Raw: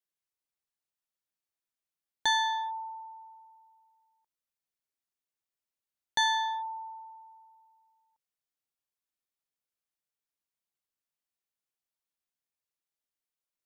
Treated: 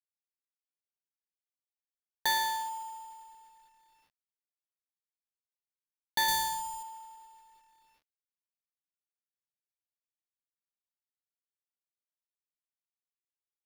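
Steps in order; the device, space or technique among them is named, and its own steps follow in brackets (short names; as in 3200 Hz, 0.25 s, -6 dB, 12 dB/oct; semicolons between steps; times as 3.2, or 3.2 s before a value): early companding sampler (sample-rate reducer 8000 Hz, jitter 0%; companded quantiser 6-bit); 6.28–6.83 tone controls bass +12 dB, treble +7 dB; gain -2 dB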